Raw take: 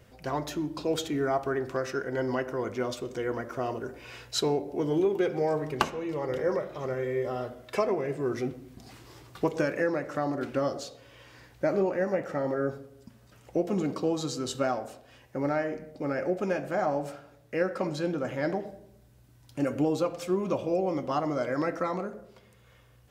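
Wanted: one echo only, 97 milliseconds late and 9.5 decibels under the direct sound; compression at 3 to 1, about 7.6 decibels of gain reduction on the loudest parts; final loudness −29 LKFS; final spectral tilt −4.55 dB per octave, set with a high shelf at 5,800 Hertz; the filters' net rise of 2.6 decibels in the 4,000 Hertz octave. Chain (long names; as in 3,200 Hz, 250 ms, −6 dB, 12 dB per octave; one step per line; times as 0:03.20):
parametric band 4,000 Hz +5 dB
high-shelf EQ 5,800 Hz −5.5 dB
downward compressor 3 to 1, threshold −31 dBFS
single-tap delay 97 ms −9.5 dB
level +5.5 dB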